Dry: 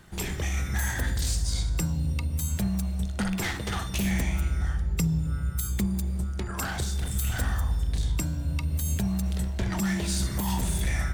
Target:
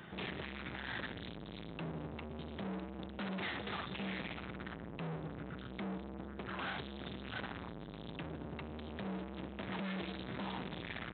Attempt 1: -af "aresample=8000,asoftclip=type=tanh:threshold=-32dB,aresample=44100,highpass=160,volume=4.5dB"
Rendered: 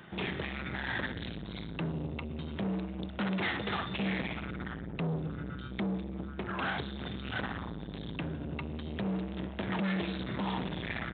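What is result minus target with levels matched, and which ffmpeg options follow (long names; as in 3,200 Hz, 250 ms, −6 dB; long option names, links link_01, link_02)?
soft clipping: distortion −4 dB
-af "aresample=8000,asoftclip=type=tanh:threshold=-42dB,aresample=44100,highpass=160,volume=4.5dB"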